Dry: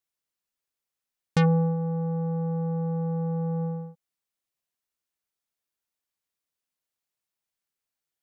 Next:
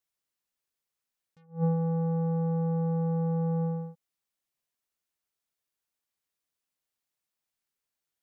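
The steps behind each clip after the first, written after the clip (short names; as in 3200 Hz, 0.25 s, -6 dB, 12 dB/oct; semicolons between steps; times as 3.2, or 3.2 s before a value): attack slew limiter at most 230 dB/s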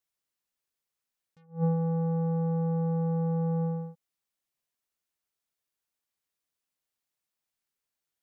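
nothing audible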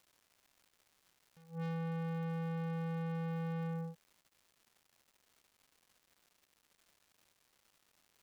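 soft clip -35.5 dBFS, distortion -13 dB; crackle 400/s -54 dBFS; gain -2 dB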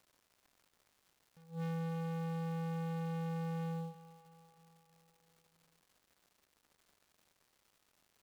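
in parallel at -9.5 dB: sample-rate reducer 3700 Hz, jitter 20%; on the sum: feedback echo 0.318 s, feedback 59%, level -16 dB; gain -2 dB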